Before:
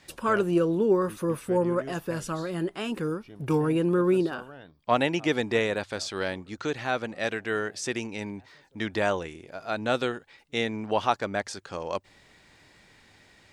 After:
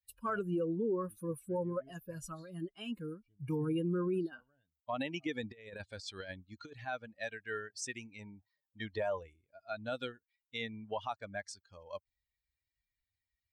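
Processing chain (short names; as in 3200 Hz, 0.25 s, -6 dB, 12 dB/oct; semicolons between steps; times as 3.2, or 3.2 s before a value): per-bin expansion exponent 2; 8.19–9.36 band shelf 700 Hz +8 dB; limiter -23.5 dBFS, peak gain reduction 11 dB; 5.43–6.85 negative-ratio compressor -41 dBFS, ratio -0.5; gain -3.5 dB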